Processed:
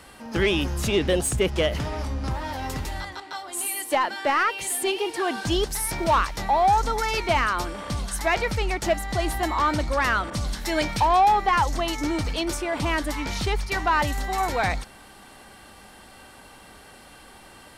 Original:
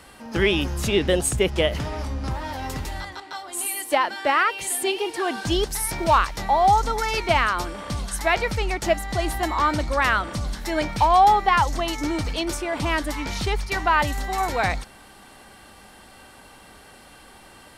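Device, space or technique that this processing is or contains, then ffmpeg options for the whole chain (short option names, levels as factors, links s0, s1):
saturation between pre-emphasis and de-emphasis: -filter_complex "[0:a]highshelf=f=2200:g=8,asoftclip=type=tanh:threshold=0.266,highshelf=f=2200:g=-8,asettb=1/sr,asplit=3[s0][s1][s2];[s0]atrim=end=10.304[s3];[s1]atrim=start=10.3:end=11,asetpts=PTS-STARTPTS,afade=t=in:d=0.004:c=qsin,afade=t=out:st=0.696:d=0.004:c=qsin,adynamicequalizer=threshold=0.01:dfrequency=2100:dqfactor=0.7:tfrequency=2100:tqfactor=0.7:attack=5:release=100:ratio=0.375:range=2.5:mode=boostabove:tftype=highshelf[s4];[s2]atrim=start=10.996[s5];[s3][s4]acrossfade=d=0.004:c1=hsin:c2=qsin[s6];[s6][s5]acrossfade=d=0.004:c1=qsin:c2=hsin"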